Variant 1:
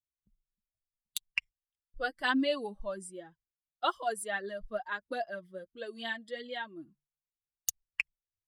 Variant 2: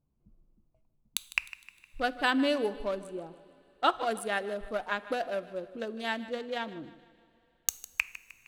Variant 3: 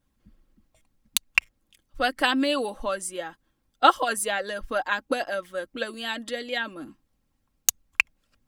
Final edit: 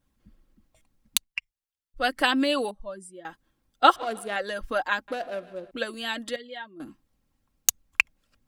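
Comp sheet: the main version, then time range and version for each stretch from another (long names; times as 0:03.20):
3
0:01.23–0:02.01: punch in from 1, crossfade 0.10 s
0:02.71–0:03.25: punch in from 1
0:03.96–0:04.36: punch in from 2
0:05.08–0:05.71: punch in from 2
0:06.36–0:06.80: punch in from 1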